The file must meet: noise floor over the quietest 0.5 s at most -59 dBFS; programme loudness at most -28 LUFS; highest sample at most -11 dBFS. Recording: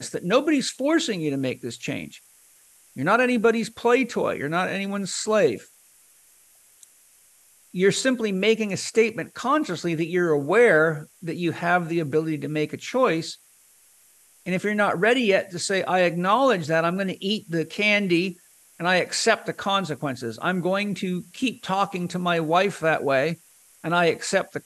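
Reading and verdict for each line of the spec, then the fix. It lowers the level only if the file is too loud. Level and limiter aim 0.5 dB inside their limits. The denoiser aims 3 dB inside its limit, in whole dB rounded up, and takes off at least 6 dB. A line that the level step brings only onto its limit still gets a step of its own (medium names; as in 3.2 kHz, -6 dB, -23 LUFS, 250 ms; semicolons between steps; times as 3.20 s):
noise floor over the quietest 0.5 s -57 dBFS: fail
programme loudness -23.0 LUFS: fail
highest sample -5.0 dBFS: fail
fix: trim -5.5 dB; peak limiter -11.5 dBFS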